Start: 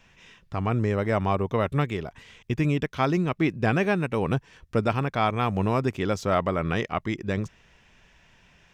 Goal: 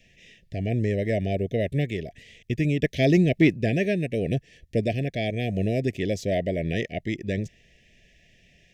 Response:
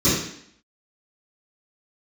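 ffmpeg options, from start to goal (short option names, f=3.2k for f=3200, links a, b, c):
-filter_complex "[0:a]asuperstop=centerf=1100:order=20:qfactor=1.1,asettb=1/sr,asplit=3[a][b][c];[a]atrim=end=2.834[d];[b]atrim=start=2.83:end=3.54,asetpts=PTS-STARTPTS,afade=t=in:d=0.004:c=qsin,afade=t=out:st=0.706:d=0.004:c=qsin,acontrast=45[e];[c]atrim=start=3.536[f];[d][e]acrossfade=d=0.004:c1=hsin:c2=qsin[g];[g][f]acrossfade=d=0.004:c1=qsin:c2=hsin"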